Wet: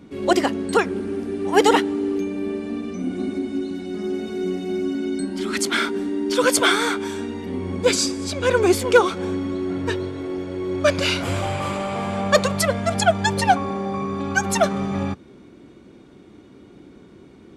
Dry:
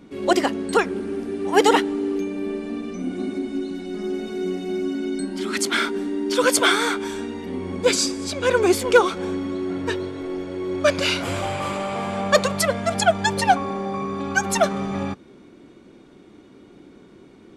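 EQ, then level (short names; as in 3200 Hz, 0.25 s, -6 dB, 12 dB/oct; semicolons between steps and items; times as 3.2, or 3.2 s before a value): HPF 57 Hz; low shelf 94 Hz +12 dB; 0.0 dB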